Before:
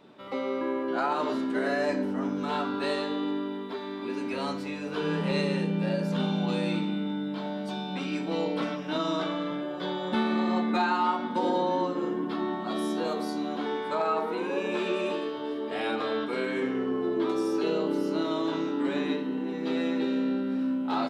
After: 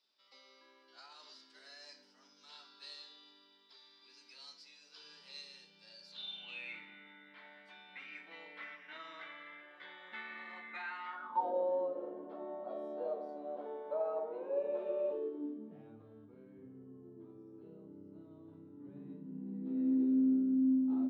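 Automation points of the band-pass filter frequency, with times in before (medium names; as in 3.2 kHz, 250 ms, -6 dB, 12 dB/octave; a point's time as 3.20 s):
band-pass filter, Q 6.8
5.99 s 5 kHz
6.80 s 2 kHz
11.09 s 2 kHz
11.54 s 580 Hz
15.06 s 580 Hz
16.02 s 100 Hz
18.65 s 100 Hz
19.96 s 270 Hz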